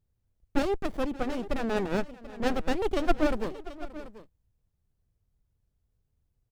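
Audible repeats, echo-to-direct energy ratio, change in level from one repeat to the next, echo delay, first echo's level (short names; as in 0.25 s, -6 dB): 2, -14.5 dB, no steady repeat, 0.578 s, -19.0 dB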